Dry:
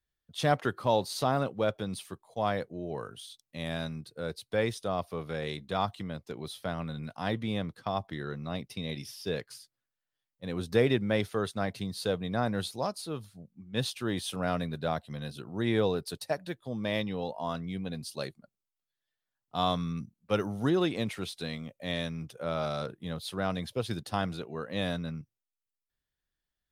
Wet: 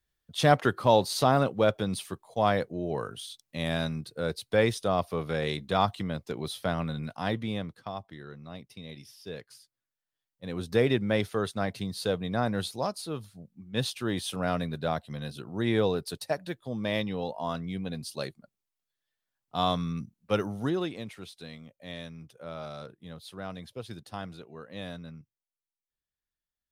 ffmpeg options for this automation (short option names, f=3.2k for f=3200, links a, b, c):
-af "volume=14dB,afade=t=out:st=6.74:d=1.3:silence=0.237137,afade=t=in:st=9.25:d=1.85:silence=0.354813,afade=t=out:st=20.34:d=0.68:silence=0.354813"